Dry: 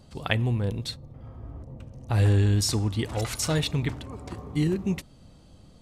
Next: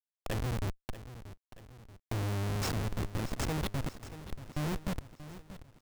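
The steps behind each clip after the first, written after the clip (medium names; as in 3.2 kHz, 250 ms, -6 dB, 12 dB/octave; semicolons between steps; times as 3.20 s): Schmitt trigger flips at -23.5 dBFS; bit-crushed delay 633 ms, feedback 55%, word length 9-bit, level -13.5 dB; trim -5 dB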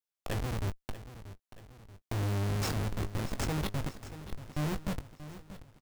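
doubling 20 ms -10 dB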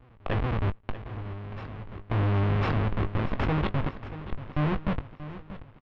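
low-pass 3 kHz 24 dB/octave; peaking EQ 1.1 kHz +4 dB 0.31 oct; reverse echo 1052 ms -14 dB; trim +6.5 dB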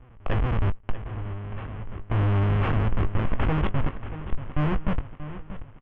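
elliptic low-pass 3.2 kHz, stop band 40 dB; bass shelf 63 Hz +10 dB; in parallel at -10.5 dB: saturation -29 dBFS, distortion -7 dB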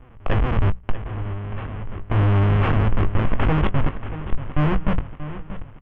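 hum notches 60/120/180 Hz; endings held to a fixed fall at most 530 dB/s; trim +5 dB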